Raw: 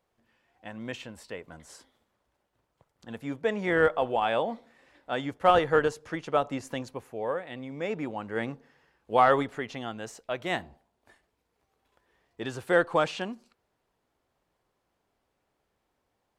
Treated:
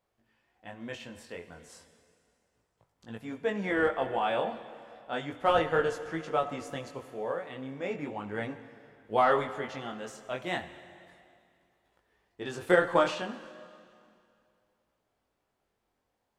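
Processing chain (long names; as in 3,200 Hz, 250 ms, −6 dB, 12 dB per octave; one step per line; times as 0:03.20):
chorus effect 0.34 Hz, delay 18 ms, depth 5.1 ms
dense smooth reverb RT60 2.4 s, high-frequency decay 0.95×, DRR 10.5 dB
0:12.46–0:13.15: transient designer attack +7 dB, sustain +3 dB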